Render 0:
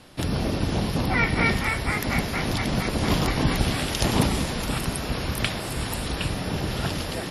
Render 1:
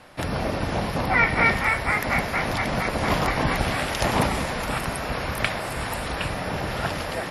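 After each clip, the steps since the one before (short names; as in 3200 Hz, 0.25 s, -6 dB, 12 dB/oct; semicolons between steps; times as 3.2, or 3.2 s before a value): band shelf 1100 Hz +8 dB 2.5 oct; gain -3 dB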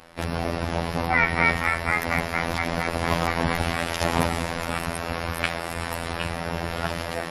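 robotiser 84.2 Hz; gain +1 dB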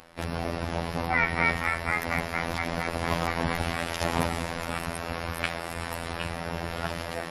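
upward compressor, threshold -45 dBFS; gain -4 dB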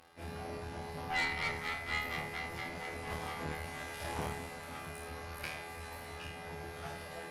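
on a send: flutter echo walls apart 4.5 m, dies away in 0.59 s; on the sum: tube stage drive 22 dB, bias 0.8; gain -4.5 dB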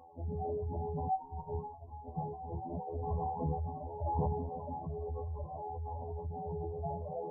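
spectral contrast raised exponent 2.6; brick-wall FIR low-pass 1100 Hz; gain +6.5 dB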